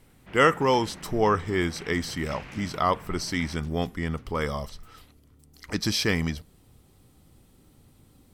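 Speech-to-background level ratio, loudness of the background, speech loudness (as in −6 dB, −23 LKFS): 18.0 dB, −44.5 LKFS, −26.5 LKFS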